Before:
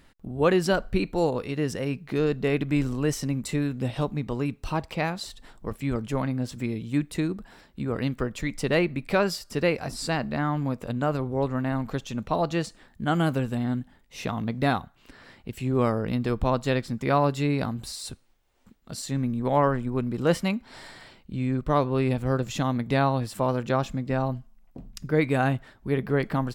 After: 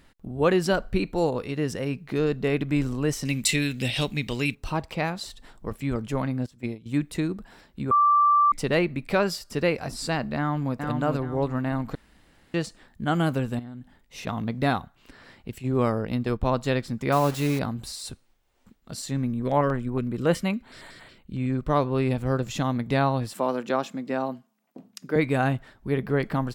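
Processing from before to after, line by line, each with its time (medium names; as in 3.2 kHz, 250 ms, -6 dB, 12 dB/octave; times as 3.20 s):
3.25–4.55 s: resonant high shelf 1.7 kHz +12.5 dB, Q 1.5
6.46–6.86 s: gate -29 dBFS, range -16 dB
7.91–8.52 s: bleep 1.17 kHz -15.5 dBFS
10.37–10.77 s: echo throw 420 ms, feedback 35%, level -4.5 dB
11.95–12.54 s: room tone
13.59–14.27 s: compression 16:1, threshold -34 dBFS
15.58–16.52 s: gate -30 dBFS, range -8 dB
17.12–17.59 s: word length cut 6-bit, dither none
19.33–21.50 s: LFO notch square 5.4 Hz 840–5300 Hz
23.33–25.16 s: high-pass 200 Hz 24 dB/octave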